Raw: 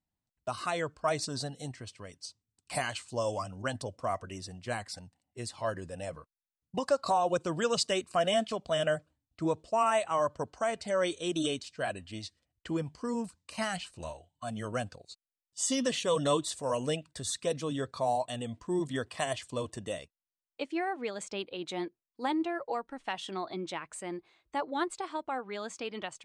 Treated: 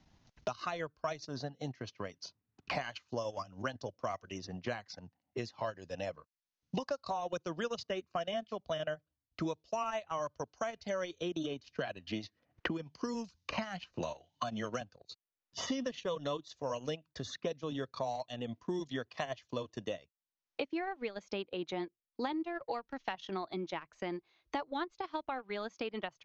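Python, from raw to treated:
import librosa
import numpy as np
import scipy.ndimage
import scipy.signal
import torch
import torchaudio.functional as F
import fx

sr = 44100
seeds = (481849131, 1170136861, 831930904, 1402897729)

y = fx.band_squash(x, sr, depth_pct=100, at=(11.2, 14.81))
y = scipy.signal.sosfilt(scipy.signal.butter(16, 6600.0, 'lowpass', fs=sr, output='sos'), y)
y = fx.transient(y, sr, attack_db=2, sustain_db=-12)
y = fx.band_squash(y, sr, depth_pct=100)
y = y * librosa.db_to_amplitude(-6.5)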